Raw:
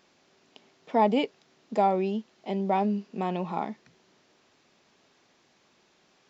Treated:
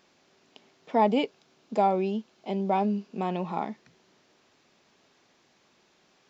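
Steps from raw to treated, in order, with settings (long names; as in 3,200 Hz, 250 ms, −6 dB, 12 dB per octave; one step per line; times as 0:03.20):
0:01.11–0:03.28: notch filter 1,900 Hz, Q 9.8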